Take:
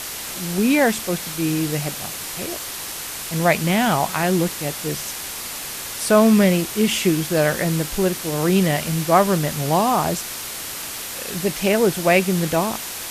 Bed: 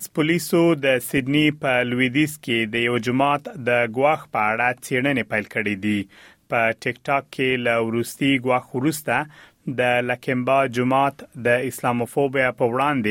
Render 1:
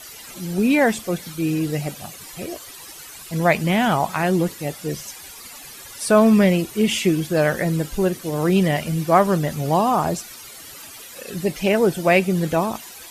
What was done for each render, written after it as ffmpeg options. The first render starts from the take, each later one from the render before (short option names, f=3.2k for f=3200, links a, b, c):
-af "afftdn=nr=14:nf=-31"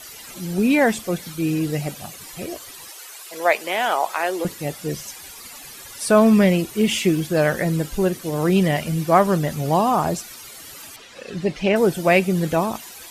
-filter_complex "[0:a]asettb=1/sr,asplit=3[a][b][c];[a]atrim=end=2.884[d];[b]atrim=start=2.88:end=4.45,asetpts=PTS-STARTPTS,afade=t=in:d=0.004:c=qsin,afade=t=out:st=1.566:d=0.004:c=qsin,highpass=f=400:w=0.5412,highpass=f=400:w=1.3066[e];[c]atrim=start=4.446[f];[d][e]acrossfade=d=0.004:c1=hsin:c2=qsin[g];[g][f]acrossfade=d=0.004:c1=qsin:c2=hsin,asettb=1/sr,asplit=3[h][i][j];[h]atrim=end=6.784[k];[i]atrim=start=6.78:end=7.22,asetpts=PTS-STARTPTS,afade=t=in:d=0.004:c=qsin,afade=t=out:st=0.436:d=0.004:c=qsin,acrusher=bits=9:dc=4:mix=0:aa=0.000001[l];[j]atrim=start=7.216[m];[k][l]acrossfade=d=0.004:c1=hsin:c2=qsin[n];[n][m]acrossfade=d=0.004:c1=qsin:c2=hsin,asettb=1/sr,asplit=3[o][p][q];[o]atrim=end=10.964[r];[p]atrim=start=10.96:end=11.76,asetpts=PTS-STARTPTS,afade=t=in:d=0.004:c=qsin,afade=t=out:st=0.796:d=0.004:c=qsin,lowpass=4.7k[s];[q]atrim=start=11.756[t];[r][s]acrossfade=d=0.004:c1=hsin:c2=qsin[u];[u][t]acrossfade=d=0.004:c1=qsin:c2=hsin"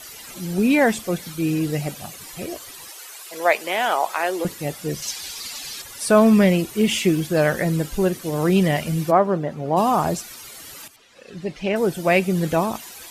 -filter_complex "[0:a]asettb=1/sr,asplit=3[a][b][c];[a]atrim=end=5.024[d];[b]atrim=start=5.02:end=5.82,asetpts=PTS-STARTPTS,afade=t=in:d=0.004:c=qsin,afade=t=out:st=0.796:d=0.004:c=qsin,equalizer=f=4.4k:t=o:w=1.6:g=11[e];[c]atrim=start=5.816[f];[d][e]acrossfade=d=0.004:c1=hsin:c2=qsin[g];[g][f]acrossfade=d=0.004:c1=qsin:c2=hsin,asplit=3[h][i][j];[h]afade=t=out:st=9.1:d=0.02[k];[i]bandpass=f=500:t=q:w=0.57,afade=t=in:st=9.1:d=0.02,afade=t=out:st=9.76:d=0.02[l];[j]afade=t=in:st=9.76:d=0.02[m];[k][l][m]amix=inputs=3:normalize=0,asplit=2[n][o];[n]atrim=end=10.88,asetpts=PTS-STARTPTS,afade=t=out:st=10.876:d=0.004:c=hsin:silence=0.237137[p];[o]atrim=start=10.88,asetpts=PTS-STARTPTS,afade=t=in:d=1.61:silence=0.237137[q];[p][q]concat=n=2:v=0:a=1"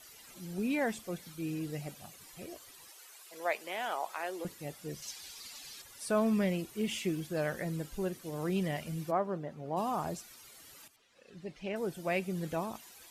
-af "volume=-15dB"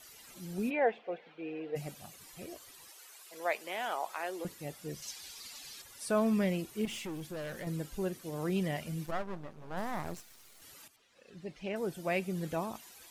-filter_complex "[0:a]asplit=3[a][b][c];[a]afade=t=out:st=0.69:d=0.02[d];[b]highpass=410,equalizer=f=470:t=q:w=4:g=10,equalizer=f=740:t=q:w=4:g=8,equalizer=f=1.2k:t=q:w=4:g=-5,equalizer=f=2.6k:t=q:w=4:g=3,lowpass=f=2.8k:w=0.5412,lowpass=f=2.8k:w=1.3066,afade=t=in:st=0.69:d=0.02,afade=t=out:st=1.75:d=0.02[e];[c]afade=t=in:st=1.75:d=0.02[f];[d][e][f]amix=inputs=3:normalize=0,asettb=1/sr,asplit=3[g][h][i];[g]atrim=end=6.854[j];[h]atrim=start=6.85:end=7.67,asetpts=PTS-STARTPTS,afade=t=in:d=0.004:c=qsin,afade=t=out:st=0.816:d=0.004:c=qsin,aeval=exprs='(tanh(70.8*val(0)+0.2)-tanh(0.2))/70.8':c=same[k];[i]atrim=start=7.666[l];[j][k]acrossfade=d=0.004:c1=hsin:c2=qsin[m];[m][l]acrossfade=d=0.004:c1=qsin:c2=hsin,asettb=1/sr,asplit=3[n][o][p];[n]atrim=end=9.064[q];[o]atrim=start=9.06:end=10.62,asetpts=PTS-STARTPTS,afade=t=in:d=0.004:c=qsin,afade=t=out:st=1.556:d=0.004:c=qsin,aeval=exprs='max(val(0),0)':c=same[r];[p]atrim=start=10.616[s];[q][r]acrossfade=d=0.004:c1=hsin:c2=qsin[t];[t][s]acrossfade=d=0.004:c1=qsin:c2=hsin"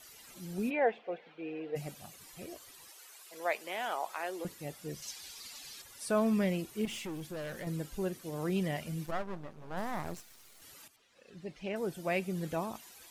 -af anull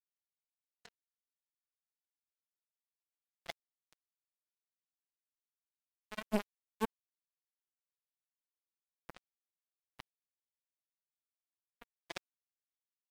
-af "aphaser=in_gain=1:out_gain=1:delay=4.7:decay=0.62:speed=1.1:type=triangular,acrusher=bits=2:mix=0:aa=0.5"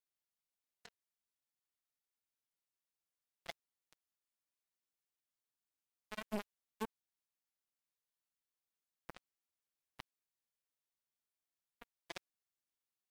-af "alimiter=level_in=2.5dB:limit=-24dB:level=0:latency=1:release=20,volume=-2.5dB"